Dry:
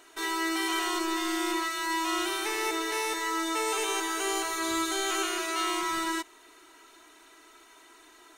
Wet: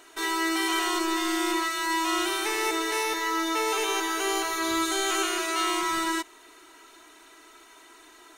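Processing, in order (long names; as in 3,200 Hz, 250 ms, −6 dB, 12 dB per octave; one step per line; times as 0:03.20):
0:03.03–0:04.82: parametric band 8,100 Hz −12 dB 0.2 octaves
level +3 dB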